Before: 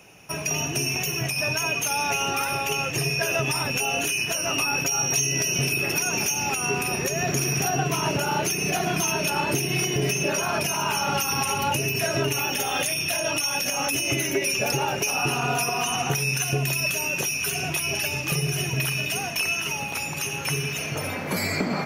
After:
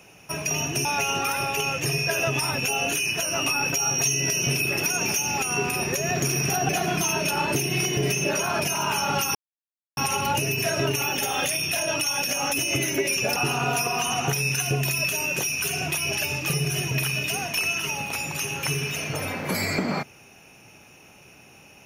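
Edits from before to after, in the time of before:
0:00.85–0:01.97: remove
0:07.81–0:08.68: remove
0:11.34: splice in silence 0.62 s
0:14.73–0:15.18: remove

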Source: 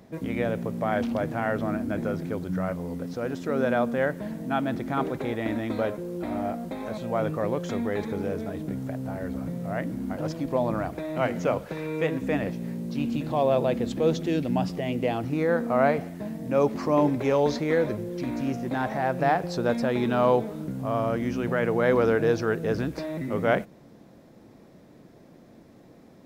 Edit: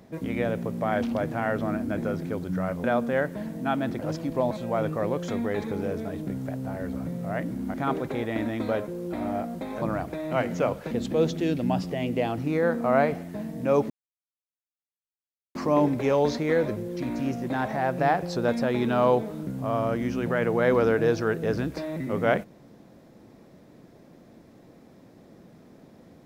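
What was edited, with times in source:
0:02.84–0:03.69: remove
0:04.84–0:06.92: swap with 0:10.15–0:10.67
0:11.76–0:13.77: remove
0:16.76: splice in silence 1.65 s

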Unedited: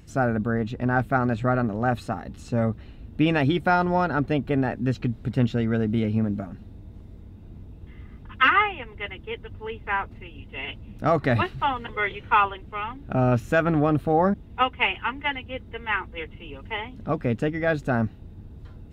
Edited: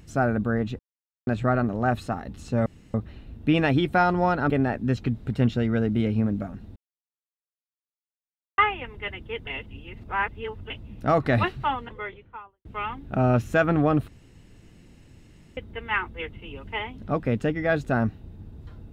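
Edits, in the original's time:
0:00.79–0:01.27: silence
0:02.66: splice in room tone 0.28 s
0:04.22–0:04.48: remove
0:06.74–0:08.56: silence
0:09.45–0:10.68: reverse
0:11.39–0:12.63: fade out and dull
0:14.06–0:15.55: fill with room tone

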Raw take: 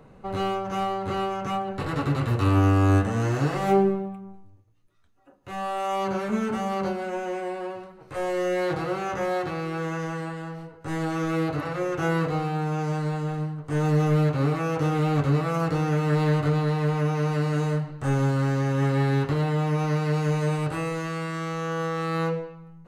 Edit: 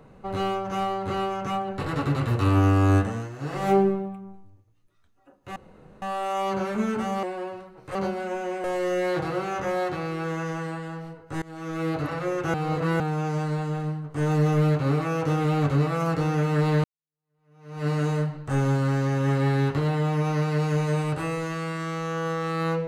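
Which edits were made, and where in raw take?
0:03.00–0:03.67: duck −13.5 dB, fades 0.29 s
0:05.56: splice in room tone 0.46 s
0:06.77–0:07.46: move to 0:08.18
0:10.96–0:11.53: fade in linear, from −23.5 dB
0:12.08–0:12.54: reverse
0:16.38–0:17.41: fade in exponential

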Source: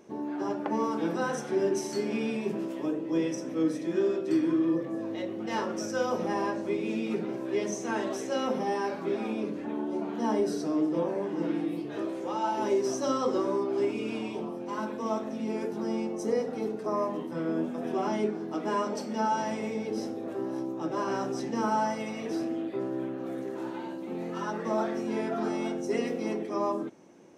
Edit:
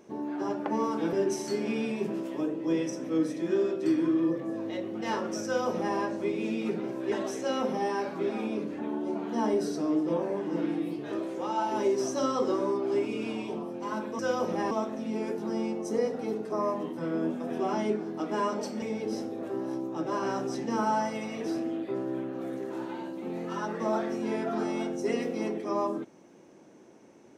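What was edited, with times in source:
0:01.13–0:01.58: remove
0:05.90–0:06.42: duplicate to 0:15.05
0:07.57–0:07.98: remove
0:19.16–0:19.67: remove

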